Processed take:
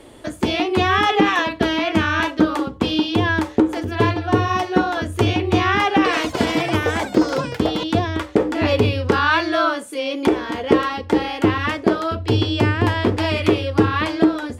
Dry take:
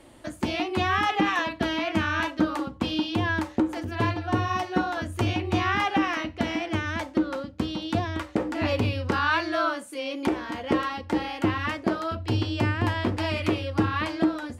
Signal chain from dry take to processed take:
hollow resonant body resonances 430/3,400 Hz, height 10 dB, ringing for 45 ms
0:05.95–0:08.63: delay with pitch and tempo change per echo 96 ms, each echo +7 semitones, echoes 3, each echo −6 dB
level +6.5 dB

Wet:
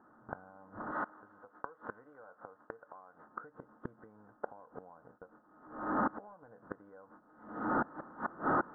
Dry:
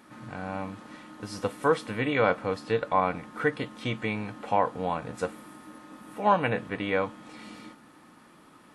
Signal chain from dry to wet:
linear delta modulator 32 kbit/s, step −34 dBFS
camcorder AGC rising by 9.4 dB per second
noise gate −34 dBFS, range −35 dB
0:00.91–0:03.27: low-shelf EQ 470 Hz −11.5 dB
floating-point word with a short mantissa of 2 bits
downward compressor 10 to 1, threshold −41 dBFS, peak gain reduction 22.5 dB
gate with flip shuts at −37 dBFS, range −24 dB
elliptic low-pass filter 1,500 Hz, stop band 40 dB
low-shelf EQ 210 Hz −10 dB
level +15.5 dB

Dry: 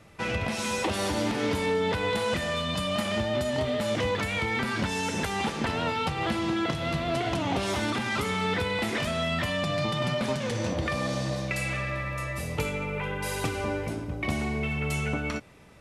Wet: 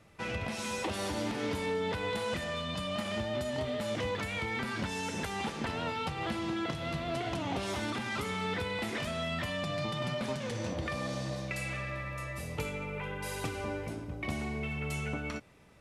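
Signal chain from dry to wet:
0:02.44–0:03.06: high-shelf EQ 10,000 Hz −7.5 dB
level −6.5 dB

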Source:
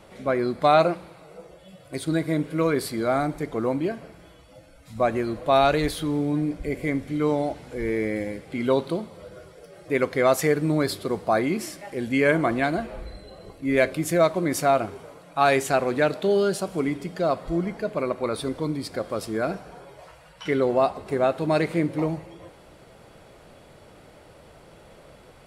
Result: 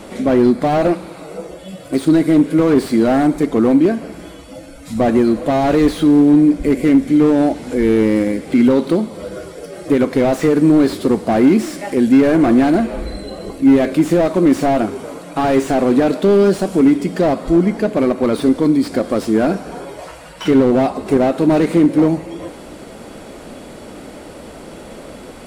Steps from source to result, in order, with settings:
octave-band graphic EQ 125/250/8,000 Hz −7/+11/+5 dB
in parallel at −0.5 dB: downward compressor, threshold −33 dBFS, peak gain reduction 20 dB
on the sum: boost into a limiter +8 dB
slew-rate limiting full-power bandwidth 180 Hz
level −1 dB

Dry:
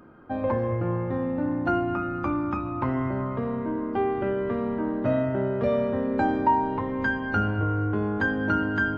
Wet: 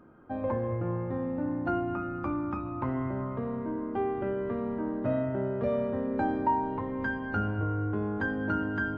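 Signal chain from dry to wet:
high-shelf EQ 2,500 Hz −8 dB
level −4.5 dB

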